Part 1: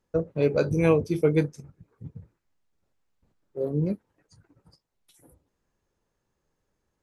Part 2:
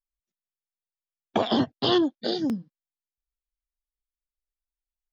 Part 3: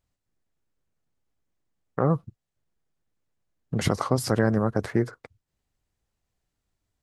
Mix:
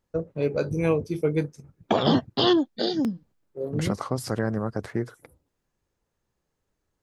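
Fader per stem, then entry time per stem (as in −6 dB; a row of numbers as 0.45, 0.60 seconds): −2.5, +1.5, −4.5 decibels; 0.00, 0.55, 0.00 seconds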